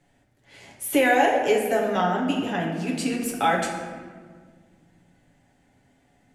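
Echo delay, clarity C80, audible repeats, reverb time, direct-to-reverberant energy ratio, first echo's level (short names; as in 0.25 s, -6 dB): none, 5.5 dB, none, 1.6 s, -2.0 dB, none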